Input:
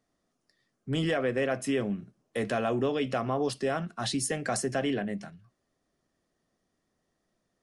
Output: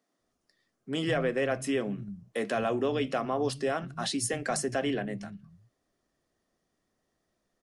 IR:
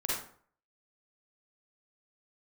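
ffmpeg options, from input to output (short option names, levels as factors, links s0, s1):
-filter_complex "[0:a]acrossover=split=170[s0][s1];[s0]adelay=190[s2];[s2][s1]amix=inputs=2:normalize=0"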